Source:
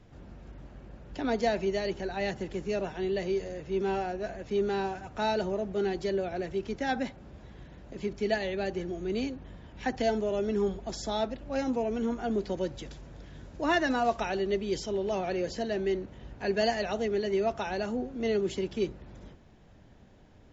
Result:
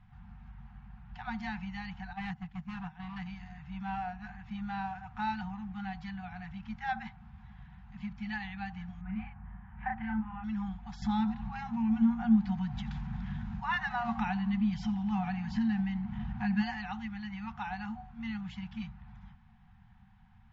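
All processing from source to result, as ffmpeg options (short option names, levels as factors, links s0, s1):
-filter_complex "[0:a]asettb=1/sr,asplit=3[s0][s1][s2];[s0]atrim=end=2.134[s3];[s1]atrim=start=2.13:end=3.26,asetpts=PTS-STARTPTS,afade=t=in:d=0.004:c=qsin,afade=t=out:st=1.126:d=0.004:c=qsin,asoftclip=type=hard:threshold=0.0355,agate=range=0.282:threshold=0.0158:ratio=16:release=100:detection=peak,equalizer=f=160:w=2.5:g=6.5[s4];[s2]atrim=start=3.256[s5];[s3][s4]acrossfade=d=0.004:c1=hsin:c2=qsin[s6];[s6][s5]acrossfade=d=0.004:c1=qsin:c2=hsin,asettb=1/sr,asplit=3[s7][s8][s9];[s7]atrim=end=9.014[s10];[s8]atrim=start=9.01:end=10.44,asetpts=PTS-STARTPTS,afade=t=in:d=0.004:c=qsin,afade=t=out:st=1.426:d=0.004:c=qsin,lowpass=f=2100:w=0.5412,lowpass=f=2100:w=1.3066,asplit=2[s11][s12];[s12]adelay=37,volume=0.794[s13];[s11][s13]amix=inputs=2:normalize=0,atrim=end_sample=63063[s14];[s9]atrim=start=10.436[s15];[s10][s14]acrossfade=d=0.004:c1=hsin:c2=qsin[s16];[s16][s15]acrossfade=d=0.004:c1=qsin:c2=hsin,asettb=1/sr,asplit=3[s17][s18][s19];[s17]atrim=end=11.024[s20];[s18]atrim=start=11.02:end=16.63,asetpts=PTS-STARTPTS,afade=t=in:d=0.004:c=qsin,afade=t=out:st=5.606:d=0.004:c=qsin,equalizer=f=250:t=o:w=1.2:g=13.5,acompressor=mode=upward:threshold=0.0794:ratio=2.5:attack=3.2:release=140:knee=2.83:detection=peak,asplit=6[s21][s22][s23][s24][s25][s26];[s22]adelay=86,afreqshift=80,volume=0.0944[s27];[s23]adelay=172,afreqshift=160,volume=0.0582[s28];[s24]adelay=258,afreqshift=240,volume=0.0363[s29];[s25]adelay=344,afreqshift=320,volume=0.0224[s30];[s26]adelay=430,afreqshift=400,volume=0.014[s31];[s21][s27][s28][s29][s30][s31]amix=inputs=6:normalize=0,atrim=end_sample=247401[s32];[s19]atrim=start=16.626[s33];[s20][s32]acrossfade=d=0.004:c1=hsin:c2=qsin[s34];[s34][s33]acrossfade=d=0.004:c1=qsin:c2=hsin,afftfilt=real='re*(1-between(b*sr/4096,230,720))':imag='im*(1-between(b*sr/4096,230,720))':win_size=4096:overlap=0.75,lowpass=2400,volume=0.794"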